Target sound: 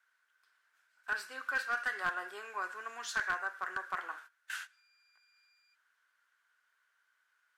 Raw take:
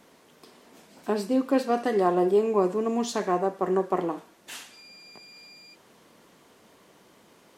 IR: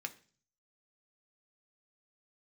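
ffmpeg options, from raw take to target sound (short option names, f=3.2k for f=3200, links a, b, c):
-af "agate=range=-16dB:threshold=-43dB:ratio=16:detection=peak,highpass=f=1.5k:t=q:w=11,aeval=exprs='clip(val(0),-1,0.106)':c=same,volume=-7.5dB"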